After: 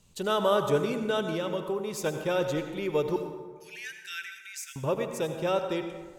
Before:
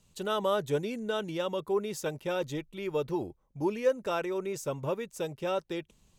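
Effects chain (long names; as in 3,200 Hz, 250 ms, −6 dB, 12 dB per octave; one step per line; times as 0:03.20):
0:01.34–0:02.04: downward compressor, threshold −32 dBFS, peak gain reduction 8.5 dB
0:03.16–0:04.76: Butterworth high-pass 1,500 Hz 96 dB per octave
convolution reverb RT60 1.5 s, pre-delay 68 ms, DRR 6.5 dB
level +3.5 dB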